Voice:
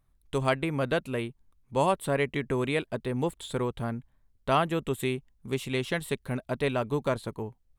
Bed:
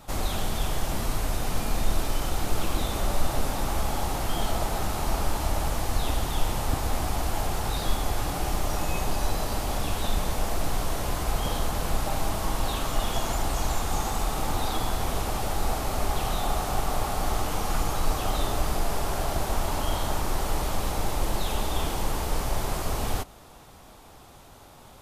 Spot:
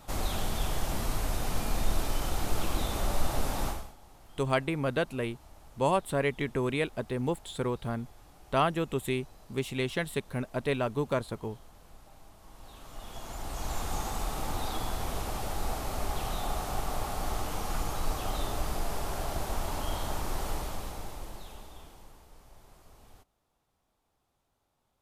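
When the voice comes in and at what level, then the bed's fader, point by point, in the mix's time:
4.05 s, −1.5 dB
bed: 0:03.68 −3.5 dB
0:03.96 −27 dB
0:12.37 −27 dB
0:13.80 −6 dB
0:20.49 −6 dB
0:22.29 −28 dB

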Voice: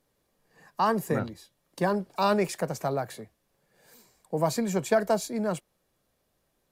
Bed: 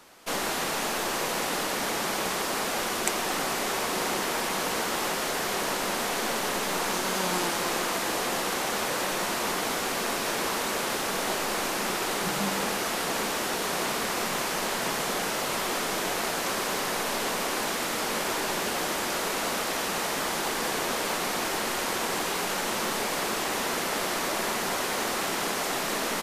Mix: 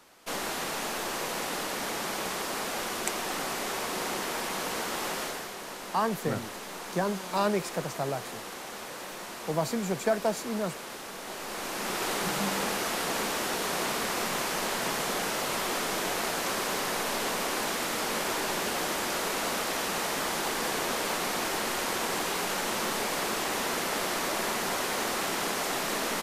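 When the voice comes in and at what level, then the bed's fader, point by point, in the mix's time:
5.15 s, −3.0 dB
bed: 0:05.22 −4 dB
0:05.54 −11.5 dB
0:11.22 −11.5 dB
0:12.05 −1.5 dB

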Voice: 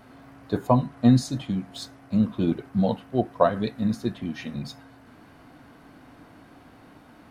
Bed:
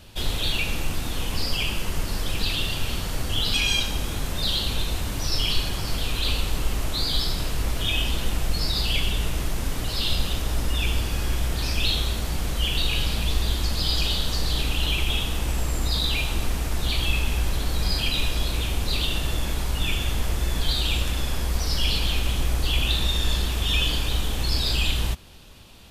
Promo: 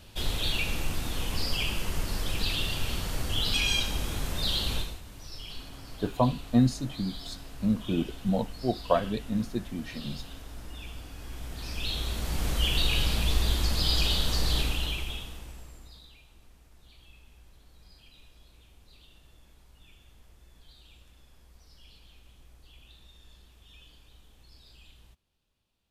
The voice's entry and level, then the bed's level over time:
5.50 s, −4.5 dB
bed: 0:04.77 −4 dB
0:05.01 −18 dB
0:11.14 −18 dB
0:12.48 −2 dB
0:14.58 −2 dB
0:16.20 −31.5 dB

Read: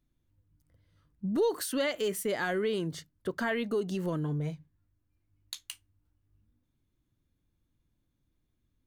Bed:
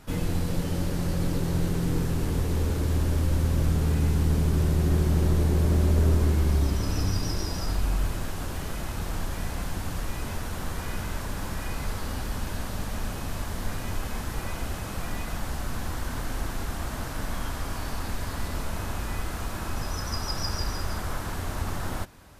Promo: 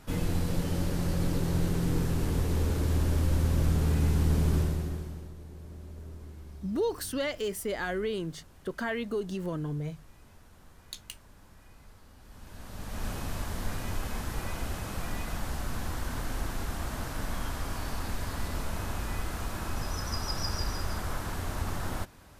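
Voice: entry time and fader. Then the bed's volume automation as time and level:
5.40 s, −1.5 dB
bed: 0:04.56 −2 dB
0:05.34 −23 dB
0:12.17 −23 dB
0:13.07 −2.5 dB

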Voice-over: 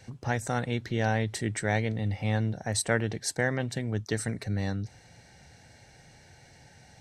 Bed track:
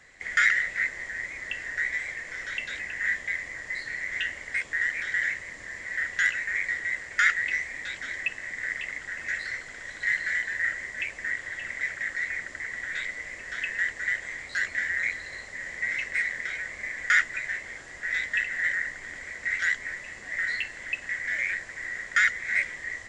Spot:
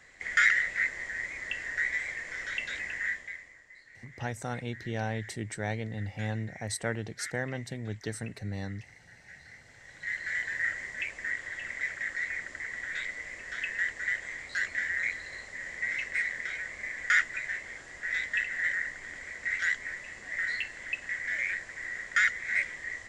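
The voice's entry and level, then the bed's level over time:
3.95 s, −6.0 dB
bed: 0:02.94 −1.5 dB
0:03.70 −20.5 dB
0:09.38 −20.5 dB
0:10.45 −3 dB

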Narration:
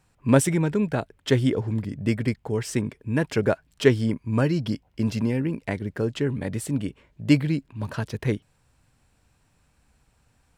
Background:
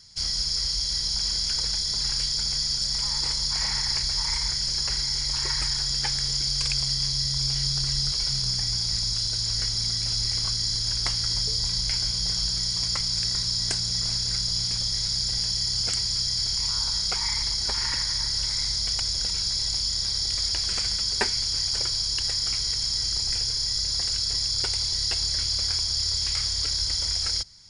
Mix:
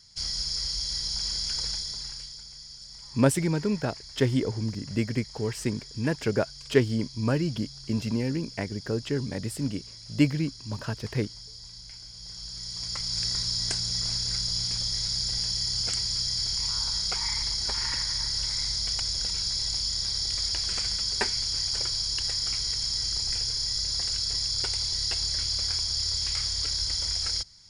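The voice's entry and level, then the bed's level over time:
2.90 s, −3.5 dB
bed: 0:01.70 −4 dB
0:02.48 −18.5 dB
0:12.09 −18.5 dB
0:13.22 −2.5 dB

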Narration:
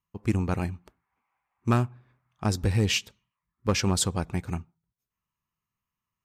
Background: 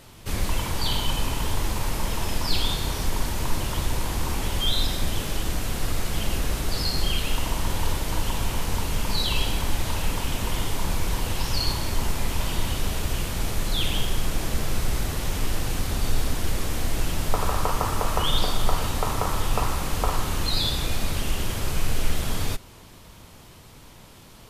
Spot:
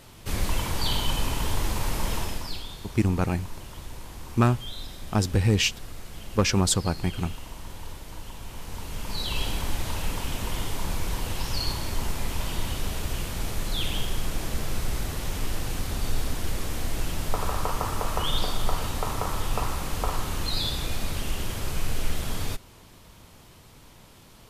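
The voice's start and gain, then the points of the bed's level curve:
2.70 s, +2.5 dB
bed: 0:02.17 −1 dB
0:02.66 −14 dB
0:08.40 −14 dB
0:09.46 −3.5 dB

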